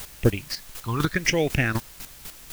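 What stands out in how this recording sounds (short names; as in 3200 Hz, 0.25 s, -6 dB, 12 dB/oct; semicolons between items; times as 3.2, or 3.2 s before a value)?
phasing stages 6, 0.87 Hz, lowest notch 530–1200 Hz; a quantiser's noise floor 8-bit, dither triangular; chopped level 4 Hz, depth 65%, duty 20%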